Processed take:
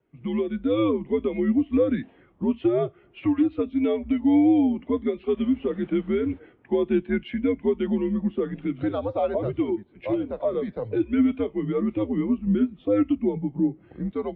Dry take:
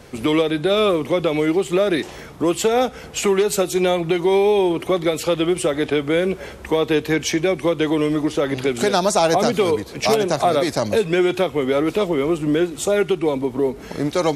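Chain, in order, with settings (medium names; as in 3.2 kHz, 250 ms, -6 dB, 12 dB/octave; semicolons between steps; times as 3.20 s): level rider gain up to 5 dB; 5.36–6.38 s: added noise pink -30 dBFS; mistuned SSB -100 Hz 160–3500 Hz; flange 0.3 Hz, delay 5.3 ms, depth 2.8 ms, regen -82%; spectral contrast expander 1.5:1; trim -4 dB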